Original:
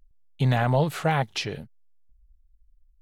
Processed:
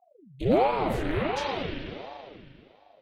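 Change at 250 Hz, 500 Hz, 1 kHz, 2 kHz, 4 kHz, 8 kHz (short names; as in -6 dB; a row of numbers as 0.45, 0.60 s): +0.5, +2.5, +0.5, -3.5, -3.5, -8.0 dB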